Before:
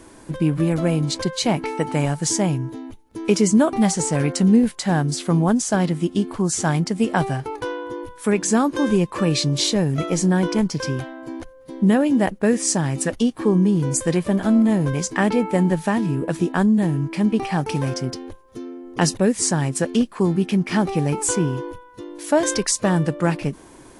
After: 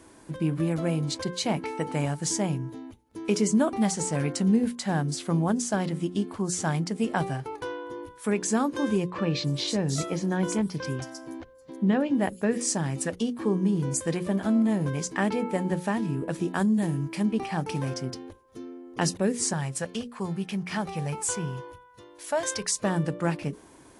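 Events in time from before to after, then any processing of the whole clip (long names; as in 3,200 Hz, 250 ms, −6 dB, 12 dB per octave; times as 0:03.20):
0:09.10–0:12.61: multiband delay without the direct sound lows, highs 320 ms, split 5,400 Hz
0:16.48–0:17.23: high-shelf EQ 5,600 Hz +9 dB
0:19.53–0:22.76: parametric band 300 Hz −13 dB 0.82 octaves
whole clip: high-pass filter 41 Hz; mains-hum notches 60/120/180/240/300/360/420/480/540 Hz; level −6.5 dB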